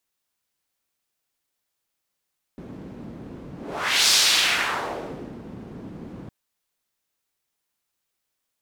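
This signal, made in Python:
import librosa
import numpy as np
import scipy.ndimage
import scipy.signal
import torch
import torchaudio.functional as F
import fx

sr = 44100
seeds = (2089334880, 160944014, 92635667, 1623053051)

y = fx.whoosh(sr, seeds[0], length_s=3.71, peak_s=1.52, rise_s=0.58, fall_s=1.38, ends_hz=220.0, peak_hz=4800.0, q=1.5, swell_db=21)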